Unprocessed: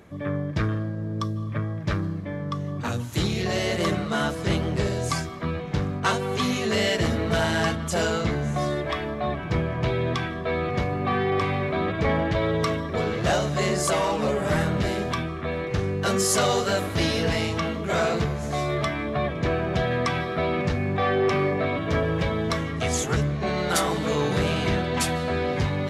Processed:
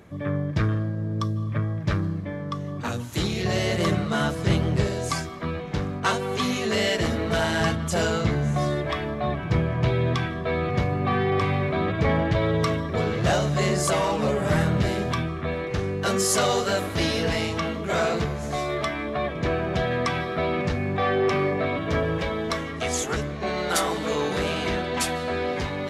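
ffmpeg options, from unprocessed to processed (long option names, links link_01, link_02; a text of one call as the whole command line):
ffmpeg -i in.wav -af "asetnsamples=nb_out_samples=441:pad=0,asendcmd='2.3 equalizer g -3;3.45 equalizer g 5.5;4.84 equalizer g -3.5;7.61 equalizer g 4.5;15.54 equalizer g -3;18.56 equalizer g -9.5;19.35 equalizer g -2;22.18 equalizer g -11.5',equalizer=frequency=120:width_type=o:width=1:gain=3" out.wav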